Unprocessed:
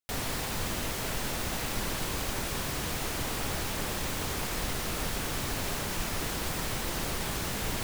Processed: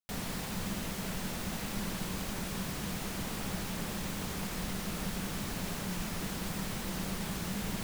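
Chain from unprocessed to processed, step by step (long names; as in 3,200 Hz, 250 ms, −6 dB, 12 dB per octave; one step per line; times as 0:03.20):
parametric band 190 Hz +14 dB 0.4 octaves
level −6 dB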